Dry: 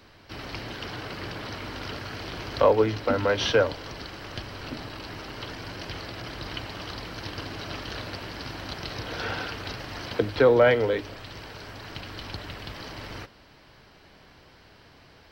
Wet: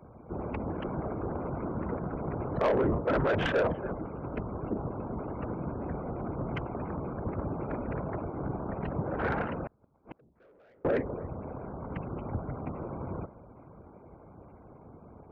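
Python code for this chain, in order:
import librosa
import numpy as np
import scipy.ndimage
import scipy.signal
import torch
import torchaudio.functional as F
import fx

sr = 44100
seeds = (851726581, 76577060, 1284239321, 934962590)

p1 = fx.wiener(x, sr, points=25)
p2 = scipy.signal.sosfilt(scipy.signal.cheby2(4, 70, 8700.0, 'lowpass', fs=sr, output='sos'), p1)
p3 = p2 + fx.echo_single(p2, sr, ms=287, db=-23.5, dry=0)
p4 = fx.spec_gate(p3, sr, threshold_db=-30, keep='strong')
p5 = fx.whisperise(p4, sr, seeds[0])
p6 = fx.over_compress(p5, sr, threshold_db=-27.0, ratio=-0.5)
p7 = p5 + (p6 * librosa.db_to_amplitude(0.5))
p8 = scipy.signal.sosfilt(scipy.signal.butter(2, 44.0, 'highpass', fs=sr, output='sos'), p7)
p9 = 10.0 ** (-18.0 / 20.0) * np.tanh(p8 / 10.0 ** (-18.0 / 20.0))
p10 = fx.gate_flip(p9, sr, shuts_db=-24.0, range_db=-35, at=(9.62, 10.85))
y = p10 * librosa.db_to_amplitude(-3.0)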